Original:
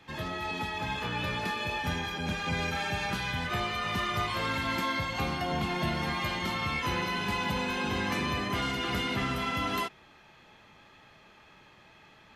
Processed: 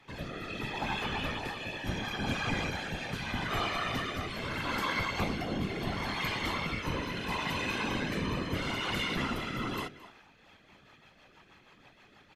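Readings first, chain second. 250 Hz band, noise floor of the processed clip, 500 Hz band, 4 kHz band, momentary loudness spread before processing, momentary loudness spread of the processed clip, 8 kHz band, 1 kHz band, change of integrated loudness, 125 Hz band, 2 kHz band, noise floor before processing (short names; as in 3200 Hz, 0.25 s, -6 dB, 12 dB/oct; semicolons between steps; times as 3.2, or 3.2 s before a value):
-1.5 dB, -61 dBFS, -2.0 dB, -2.5 dB, 3 LU, 5 LU, -2.5 dB, -4.0 dB, -2.5 dB, -2.0 dB, -2.5 dB, -57 dBFS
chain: outdoor echo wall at 38 m, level -18 dB; rotary speaker horn 0.75 Hz, later 6.3 Hz, at 9.95; whisperiser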